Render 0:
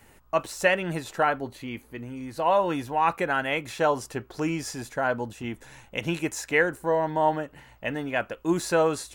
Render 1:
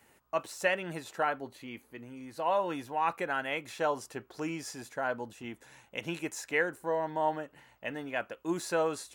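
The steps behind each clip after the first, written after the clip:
high-pass filter 210 Hz 6 dB per octave
level −6.5 dB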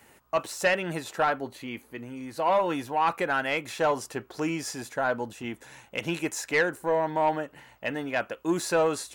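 soft clipping −22 dBFS, distortion −17 dB
level +7 dB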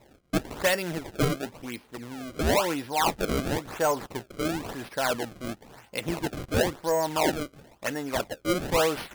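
sample-and-hold swept by an LFO 28×, swing 160% 0.97 Hz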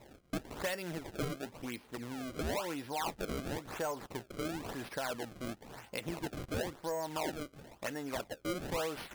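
downward compressor 2.5 to 1, threshold −40 dBFS, peak gain reduction 13.5 dB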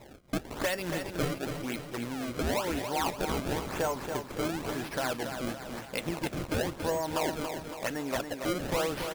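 repeating echo 281 ms, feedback 52%, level −7 dB
level +5.5 dB

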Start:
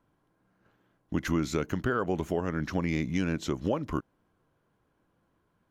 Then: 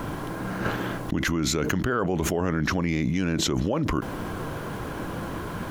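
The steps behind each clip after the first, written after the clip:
envelope flattener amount 100%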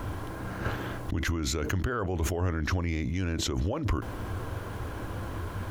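low shelf with overshoot 120 Hz +6 dB, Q 3
level −5.5 dB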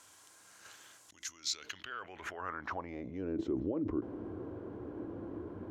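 band-pass filter sweep 7,300 Hz → 330 Hz, 0:01.21–0:03.42
level +2 dB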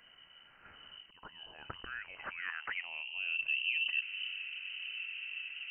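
wind on the microphone 92 Hz −54 dBFS
voice inversion scrambler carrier 3,000 Hz

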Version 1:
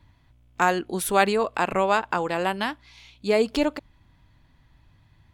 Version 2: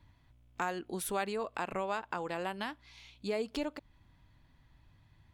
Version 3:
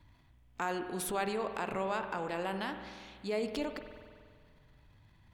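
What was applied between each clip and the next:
downward compressor 2 to 1, threshold −32 dBFS, peak gain reduction 10.5 dB; level −5.5 dB
transient designer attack −2 dB, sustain +6 dB; spring reverb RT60 1.9 s, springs 47 ms, chirp 50 ms, DRR 7.5 dB

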